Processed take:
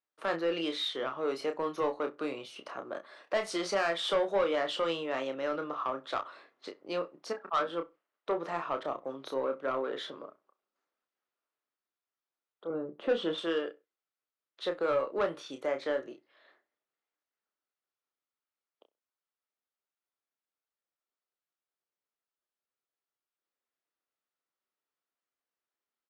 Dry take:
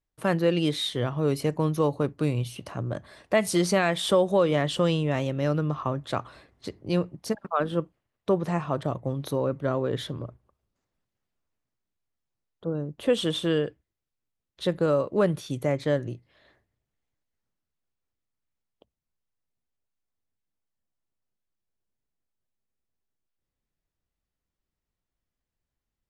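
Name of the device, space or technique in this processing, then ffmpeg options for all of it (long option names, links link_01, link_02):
intercom: -filter_complex "[0:a]highpass=240,asettb=1/sr,asplit=3[link_01][link_02][link_03];[link_01]atrim=end=12.704[link_04];[link_02]atrim=start=12.7:end=13.38,asetpts=PTS-STARTPTS,afade=type=in:duration=0.004:curve=qsin,afade=type=out:start_time=0.676:duration=0.004:curve=qsin,aemphasis=mode=reproduction:type=riaa[link_05];[link_03]atrim=start=13.376[link_06];[link_04][link_05]acrossfade=duration=0.004:curve1=hsin:curve2=qsin[link_07];[link_07][link_06]acrossfade=duration=0.004:curve1=qsin:curve2=hsin,highpass=360,lowpass=4900,equalizer=frequency=1300:width_type=o:width=0.45:gain=6,asoftclip=type=tanh:threshold=-19dB,asplit=2[link_08][link_09];[link_09]adelay=30,volume=-7dB[link_10];[link_08][link_10]amix=inputs=2:normalize=0,asplit=2[link_11][link_12];[link_12]adelay=64,lowpass=frequency=1700:poles=1,volume=-20dB,asplit=2[link_13][link_14];[link_14]adelay=64,lowpass=frequency=1700:poles=1,volume=0.23[link_15];[link_11][link_13][link_15]amix=inputs=3:normalize=0,volume=-3.5dB"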